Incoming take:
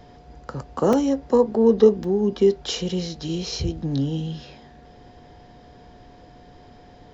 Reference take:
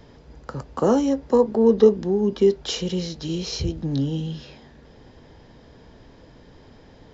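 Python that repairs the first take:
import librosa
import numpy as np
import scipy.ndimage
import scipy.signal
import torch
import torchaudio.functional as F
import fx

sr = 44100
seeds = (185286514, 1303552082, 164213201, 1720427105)

y = fx.notch(x, sr, hz=720.0, q=30.0)
y = fx.fix_interpolate(y, sr, at_s=(0.93, 2.04), length_ms=2.6)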